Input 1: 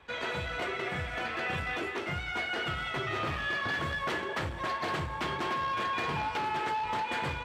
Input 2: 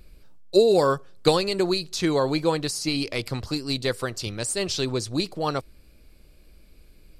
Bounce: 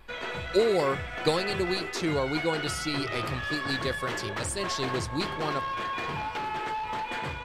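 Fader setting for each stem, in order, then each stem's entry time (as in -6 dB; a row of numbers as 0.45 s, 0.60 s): -0.5 dB, -6.0 dB; 0.00 s, 0.00 s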